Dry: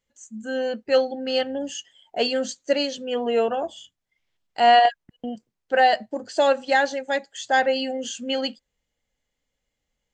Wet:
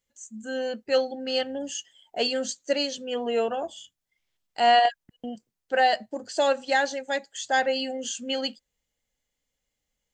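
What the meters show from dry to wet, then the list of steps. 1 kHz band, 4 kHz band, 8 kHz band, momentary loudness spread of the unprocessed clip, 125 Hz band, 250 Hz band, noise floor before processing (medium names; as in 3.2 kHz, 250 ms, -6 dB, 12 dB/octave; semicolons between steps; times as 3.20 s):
-4.0 dB, -1.5 dB, +1.5 dB, 17 LU, no reading, -4.0 dB, -81 dBFS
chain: treble shelf 5.2 kHz +9 dB; trim -4 dB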